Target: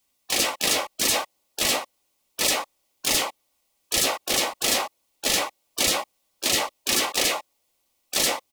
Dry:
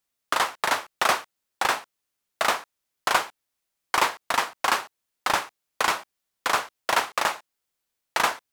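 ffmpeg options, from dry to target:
ffmpeg -i in.wav -filter_complex "[0:a]asuperstop=centerf=1500:order=8:qfactor=2.4,afftfilt=real='re*lt(hypot(re,im),0.0794)':imag='im*lt(hypot(re,im),0.0794)':win_size=1024:overlap=0.75,aecho=1:1:3.6:0.4,asplit=2[link_01][link_02];[link_02]asetrate=58866,aresample=44100,atempo=0.749154,volume=-4dB[link_03];[link_01][link_03]amix=inputs=2:normalize=0,adynamicequalizer=threshold=0.00224:dfrequency=600:dqfactor=1.1:tfrequency=600:tqfactor=1.1:attack=5:release=100:ratio=0.375:range=3:mode=boostabove:tftype=bell,volume=8dB" out.wav

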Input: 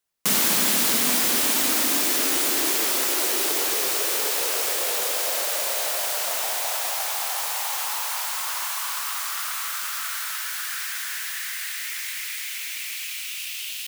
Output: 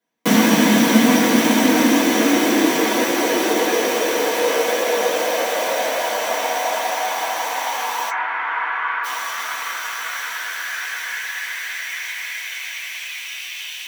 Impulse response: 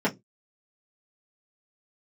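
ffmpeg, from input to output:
-filter_complex "[0:a]asplit=3[link_01][link_02][link_03];[link_01]afade=type=out:start_time=8.09:duration=0.02[link_04];[link_02]highpass=frequency=280:width=0.5412,highpass=frequency=280:width=1.3066,equalizer=frequency=570:width_type=q:width=4:gain=-9,equalizer=frequency=1400:width_type=q:width=4:gain=8,equalizer=frequency=2000:width_type=q:width=4:gain=4,lowpass=frequency=2500:width=0.5412,lowpass=frequency=2500:width=1.3066,afade=type=in:start_time=8.09:duration=0.02,afade=type=out:start_time=9.03:duration=0.02[link_05];[link_03]afade=type=in:start_time=9.03:duration=0.02[link_06];[link_04][link_05][link_06]amix=inputs=3:normalize=0[link_07];[1:a]atrim=start_sample=2205,asetrate=48510,aresample=44100[link_08];[link_07][link_08]afir=irnorm=-1:irlink=0,volume=-3dB"

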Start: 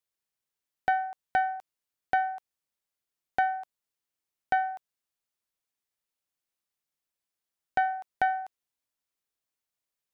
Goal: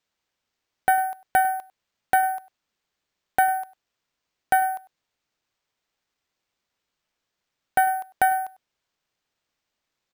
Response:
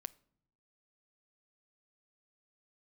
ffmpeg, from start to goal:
-filter_complex "[0:a]asplit=2[link_01][link_02];[link_02]adelay=99.13,volume=-19dB,highshelf=frequency=4000:gain=-2.23[link_03];[link_01][link_03]amix=inputs=2:normalize=0,acrusher=samples=4:mix=1:aa=0.000001,volume=6dB"

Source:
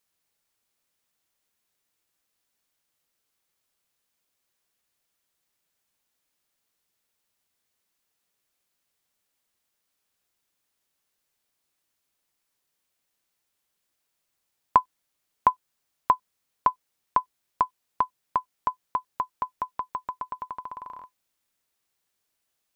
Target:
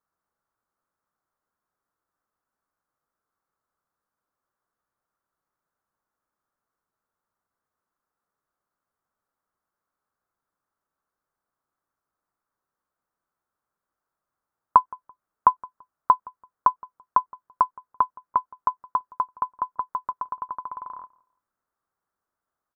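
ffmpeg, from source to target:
ffmpeg -i in.wav -filter_complex "[0:a]highshelf=frequency=1900:width_type=q:width=3:gain=-13.5,asplit=2[link_01][link_02];[link_02]adelay=168,lowpass=frequency=1200:poles=1,volume=-21.5dB,asplit=2[link_03][link_04];[link_04]adelay=168,lowpass=frequency=1200:poles=1,volume=0.3[link_05];[link_03][link_05]amix=inputs=2:normalize=0[link_06];[link_01][link_06]amix=inputs=2:normalize=0,volume=-2dB" out.wav

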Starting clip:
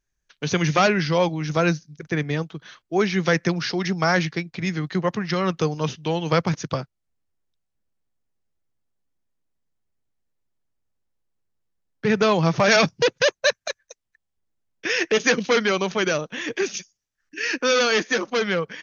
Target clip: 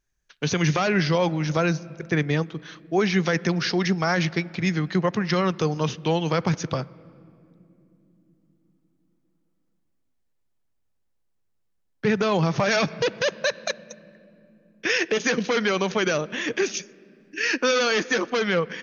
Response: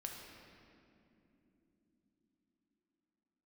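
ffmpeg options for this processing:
-filter_complex "[0:a]asplit=2[link_01][link_02];[1:a]atrim=start_sample=2205,lowpass=4400[link_03];[link_02][link_03]afir=irnorm=-1:irlink=0,volume=-17dB[link_04];[link_01][link_04]amix=inputs=2:normalize=0,alimiter=limit=-13dB:level=0:latency=1:release=59,volume=1dB"

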